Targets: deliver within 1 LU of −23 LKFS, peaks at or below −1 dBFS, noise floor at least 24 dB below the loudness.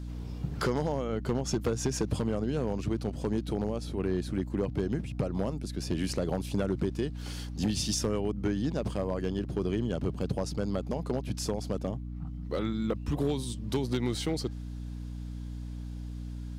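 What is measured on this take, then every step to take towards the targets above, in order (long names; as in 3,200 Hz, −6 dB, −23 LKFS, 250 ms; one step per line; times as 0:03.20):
share of clipped samples 0.6%; peaks flattened at −21.0 dBFS; mains hum 60 Hz; hum harmonics up to 300 Hz; level of the hum −36 dBFS; integrated loudness −32.5 LKFS; sample peak −21.0 dBFS; target loudness −23.0 LKFS
→ clipped peaks rebuilt −21 dBFS
mains-hum notches 60/120/180/240/300 Hz
level +9.5 dB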